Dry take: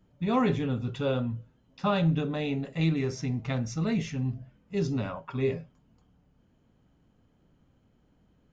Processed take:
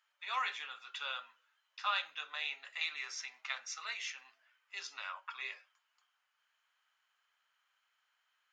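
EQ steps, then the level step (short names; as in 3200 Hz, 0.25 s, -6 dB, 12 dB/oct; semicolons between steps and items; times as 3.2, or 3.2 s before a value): HPF 1300 Hz 24 dB/oct; dynamic EQ 1700 Hz, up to -3 dB, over -50 dBFS, Q 1.3; high shelf 5600 Hz -8.5 dB; +4.5 dB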